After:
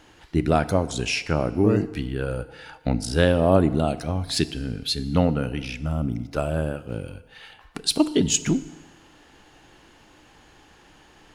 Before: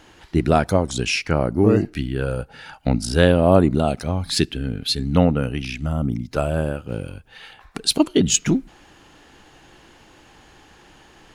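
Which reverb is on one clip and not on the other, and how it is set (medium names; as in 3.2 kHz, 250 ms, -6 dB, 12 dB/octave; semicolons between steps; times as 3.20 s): FDN reverb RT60 1.4 s, low-frequency decay 0.75×, high-frequency decay 0.8×, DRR 13.5 dB; trim -3.5 dB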